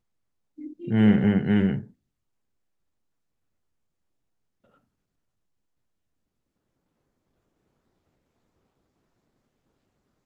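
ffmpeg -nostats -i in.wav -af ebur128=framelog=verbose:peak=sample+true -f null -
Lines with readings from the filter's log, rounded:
Integrated loudness:
  I:         -22.1 LUFS
  Threshold: -34.7 LUFS
Loudness range:
  LRA:         9.9 LU
  Threshold: -47.7 LUFS
  LRA low:   -35.9 LUFS
  LRA high:  -26.0 LUFS
Sample peak:
  Peak:       -8.2 dBFS
True peak:
  Peak:       -8.2 dBFS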